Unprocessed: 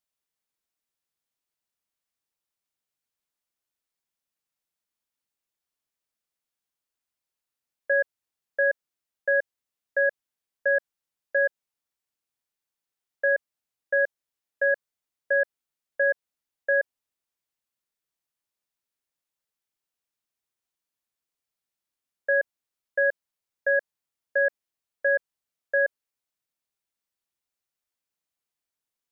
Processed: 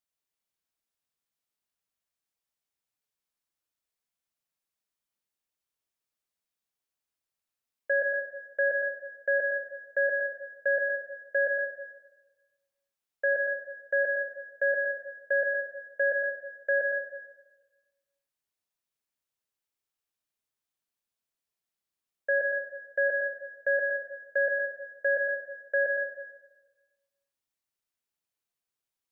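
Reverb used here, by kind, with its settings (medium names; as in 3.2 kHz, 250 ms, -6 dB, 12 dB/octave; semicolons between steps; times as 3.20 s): plate-style reverb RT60 1.2 s, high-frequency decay 0.85×, pre-delay 90 ms, DRR 2.5 dB; trim -3.5 dB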